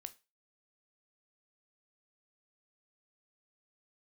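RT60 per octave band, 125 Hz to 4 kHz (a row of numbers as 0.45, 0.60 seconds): 0.20, 0.20, 0.30, 0.30, 0.30, 0.30 seconds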